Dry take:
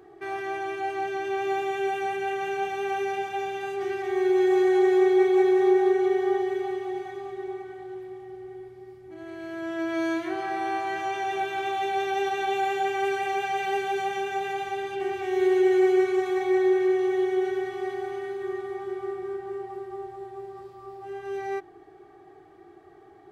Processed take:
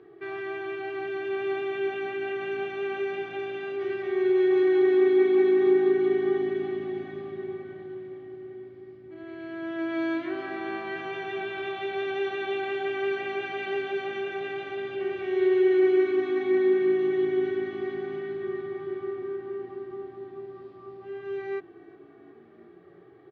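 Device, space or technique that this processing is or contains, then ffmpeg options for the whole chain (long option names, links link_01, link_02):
frequency-shifting delay pedal into a guitar cabinet: -filter_complex "[0:a]asplit=6[link_01][link_02][link_03][link_04][link_05][link_06];[link_02]adelay=361,afreqshift=-54,volume=-22dB[link_07];[link_03]adelay=722,afreqshift=-108,volume=-25.7dB[link_08];[link_04]adelay=1083,afreqshift=-162,volume=-29.5dB[link_09];[link_05]adelay=1444,afreqshift=-216,volume=-33.2dB[link_10];[link_06]adelay=1805,afreqshift=-270,volume=-37dB[link_11];[link_01][link_07][link_08][link_09][link_10][link_11]amix=inputs=6:normalize=0,highpass=85,equalizer=frequency=150:width_type=q:width=4:gain=4,equalizer=frequency=260:width_type=q:width=4:gain=3,equalizer=frequency=480:width_type=q:width=4:gain=5,equalizer=frequency=790:width_type=q:width=4:gain=-10,lowpass=frequency=3900:width=0.5412,lowpass=frequency=3900:width=1.3066,volume=-1.5dB"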